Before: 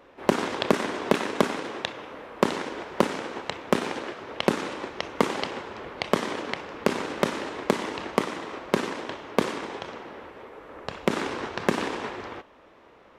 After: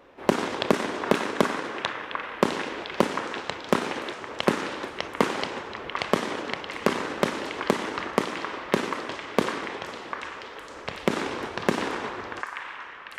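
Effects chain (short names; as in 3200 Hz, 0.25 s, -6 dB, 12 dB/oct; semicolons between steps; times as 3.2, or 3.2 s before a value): delay with a stepping band-pass 0.746 s, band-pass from 1400 Hz, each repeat 0.7 oct, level -2 dB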